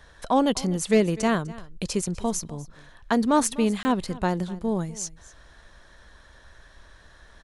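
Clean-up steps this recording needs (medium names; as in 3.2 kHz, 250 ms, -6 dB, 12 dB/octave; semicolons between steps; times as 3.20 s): clip repair -10.5 dBFS; interpolate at 3.83 s, 20 ms; inverse comb 250 ms -19.5 dB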